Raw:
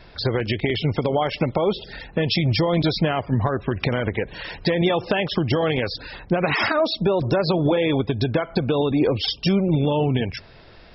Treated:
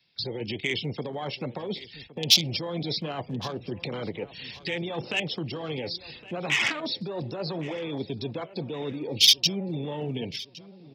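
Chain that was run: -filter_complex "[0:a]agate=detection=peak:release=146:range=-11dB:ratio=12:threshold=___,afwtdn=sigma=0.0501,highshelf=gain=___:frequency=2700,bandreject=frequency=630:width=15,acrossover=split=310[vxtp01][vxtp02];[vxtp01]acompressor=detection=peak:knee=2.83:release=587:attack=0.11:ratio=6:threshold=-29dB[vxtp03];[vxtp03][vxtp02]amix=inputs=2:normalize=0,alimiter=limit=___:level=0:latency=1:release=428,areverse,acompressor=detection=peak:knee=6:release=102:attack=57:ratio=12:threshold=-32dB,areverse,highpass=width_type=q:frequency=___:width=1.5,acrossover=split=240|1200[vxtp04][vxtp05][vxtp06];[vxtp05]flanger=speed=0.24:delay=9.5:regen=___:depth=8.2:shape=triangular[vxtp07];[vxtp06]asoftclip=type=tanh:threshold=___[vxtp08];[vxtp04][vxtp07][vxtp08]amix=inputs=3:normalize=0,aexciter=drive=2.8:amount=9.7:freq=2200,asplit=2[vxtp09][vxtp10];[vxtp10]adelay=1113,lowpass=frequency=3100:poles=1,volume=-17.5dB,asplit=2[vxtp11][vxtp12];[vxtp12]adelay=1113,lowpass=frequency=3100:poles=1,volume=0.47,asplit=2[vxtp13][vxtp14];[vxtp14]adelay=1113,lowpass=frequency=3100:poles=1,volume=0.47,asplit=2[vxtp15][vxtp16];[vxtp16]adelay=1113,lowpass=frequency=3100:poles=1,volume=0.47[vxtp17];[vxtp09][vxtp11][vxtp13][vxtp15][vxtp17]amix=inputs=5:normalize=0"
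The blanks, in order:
-39dB, -7, -14dB, 150, -61, -26.5dB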